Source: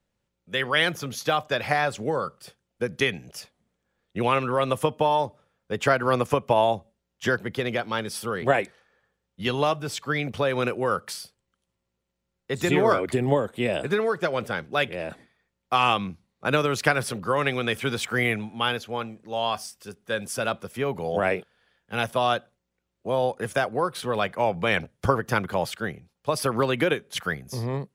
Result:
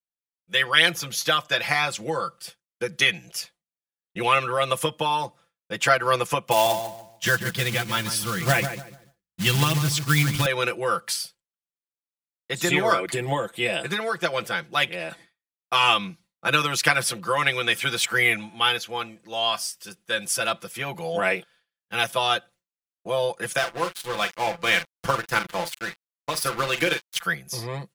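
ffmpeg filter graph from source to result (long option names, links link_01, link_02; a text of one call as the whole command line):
ffmpeg -i in.wav -filter_complex "[0:a]asettb=1/sr,asplit=3[link_01][link_02][link_03];[link_01]atrim=end=6.514[link_04];[link_02]atrim=start=6.51:end=10.46,asetpts=PTS-STARTPTS,afade=type=in:duration=0.004:curve=qsin,afade=type=out:start_time=3.946:duration=0.004:curve=qsin,asplit=2[link_05][link_06];[link_06]adelay=145,lowpass=frequency=1400:poles=1,volume=-8dB,asplit=2[link_07][link_08];[link_08]adelay=145,lowpass=frequency=1400:poles=1,volume=0.33,asplit=2[link_09][link_10];[link_10]adelay=145,lowpass=frequency=1400:poles=1,volume=0.33,asplit=2[link_11][link_12];[link_12]adelay=145,lowpass=frequency=1400:poles=1,volume=0.33[link_13];[link_05][link_07][link_09][link_11][link_13]amix=inputs=5:normalize=0,atrim=end_sample=174195,asubboost=boost=10:cutoff=190,acrusher=bits=4:mode=log:mix=0:aa=0.000001[link_14];[link_03]atrim=start=10.456[link_15];[link_04][link_14]acrossfade=duration=0.004:curve1=hsin:curve2=qsin[link_16];[link_16][link_15]acrossfade=duration=0.004:curve1=qsin:curve2=hsin,asettb=1/sr,asplit=3[link_17][link_18][link_19];[link_17]atrim=end=23.584[link_20];[link_18]atrim=start=23.58:end=27.2,asetpts=PTS-STARTPTS,afade=type=in:duration=0.004:curve=qsin,afade=type=out:start_time=3.616:duration=0.004:curve=qsin,asplit=2[link_21][link_22];[link_22]adelay=43,volume=-9dB[link_23];[link_21][link_23]amix=inputs=2:normalize=0,atrim=end_sample=159642,aeval=exprs='sgn(val(0))*max(abs(val(0))-0.0211,0)':channel_layout=same[link_24];[link_19]atrim=start=27.196[link_25];[link_20][link_24]acrossfade=duration=0.004:curve1=hsin:curve2=qsin[link_26];[link_26][link_25]acrossfade=duration=0.004:curve1=qsin:curve2=hsin,agate=range=-33dB:threshold=-48dB:ratio=3:detection=peak,tiltshelf=frequency=1200:gain=-6.5,aecho=1:1:5.9:0.79" out.wav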